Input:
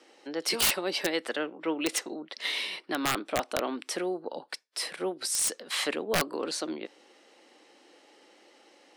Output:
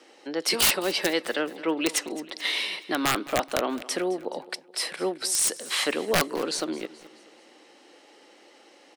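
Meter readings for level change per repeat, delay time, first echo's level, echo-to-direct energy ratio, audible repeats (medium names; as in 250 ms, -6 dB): -6.0 dB, 214 ms, -18.5 dB, -17.5 dB, 3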